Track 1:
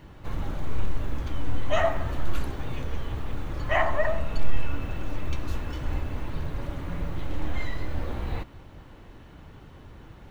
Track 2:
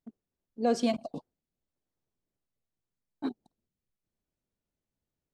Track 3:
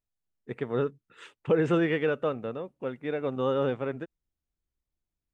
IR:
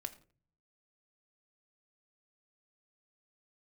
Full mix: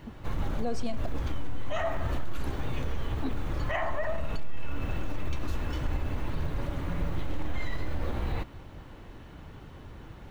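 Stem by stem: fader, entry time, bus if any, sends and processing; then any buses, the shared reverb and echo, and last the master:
+1.0 dB, 0.00 s, no send, no processing
+2.5 dB, 0.00 s, no send, no processing
muted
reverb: not used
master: brickwall limiter −20.5 dBFS, peak gain reduction 12.5 dB

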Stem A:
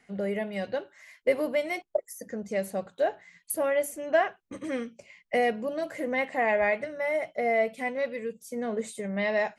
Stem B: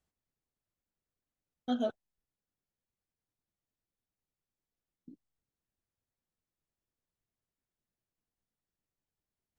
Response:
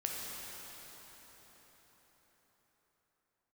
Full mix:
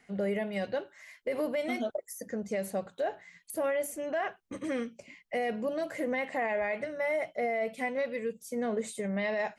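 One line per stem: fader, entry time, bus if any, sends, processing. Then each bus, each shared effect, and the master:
0.0 dB, 0.00 s, no send, de-essing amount 60%
+1.0 dB, 0.00 s, no send, expander for the loud parts 1.5 to 1, over −43 dBFS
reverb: not used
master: brickwall limiter −23.5 dBFS, peak gain reduction 11 dB

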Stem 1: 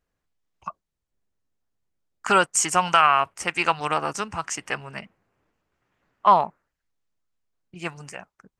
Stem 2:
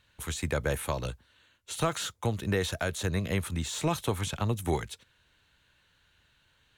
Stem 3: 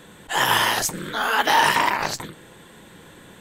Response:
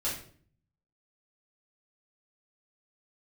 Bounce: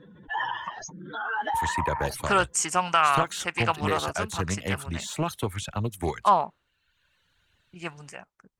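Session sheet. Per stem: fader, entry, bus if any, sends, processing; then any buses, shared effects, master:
−4.0 dB, 0.00 s, no send, no processing
+1.0 dB, 1.35 s, no send, reverb reduction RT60 1.2 s
−3.0 dB, 0.00 s, no send, expanding power law on the bin magnitudes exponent 2.5; Chebyshev low-pass filter 6,600 Hz, order 8; downward compressor 2.5 to 1, threshold −25 dBFS, peak gain reduction 7.5 dB; automatic ducking −10 dB, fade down 0.20 s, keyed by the first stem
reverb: not used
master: highs frequency-modulated by the lows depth 0.22 ms

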